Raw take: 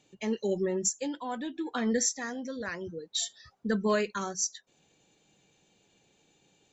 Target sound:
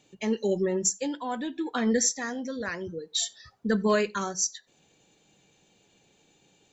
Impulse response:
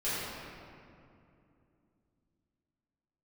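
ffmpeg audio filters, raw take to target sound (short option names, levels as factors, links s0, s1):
-filter_complex "[0:a]asplit=2[s0][s1];[1:a]atrim=start_sample=2205,atrim=end_sample=4410[s2];[s1][s2]afir=irnorm=-1:irlink=0,volume=0.0531[s3];[s0][s3]amix=inputs=2:normalize=0,volume=1.41"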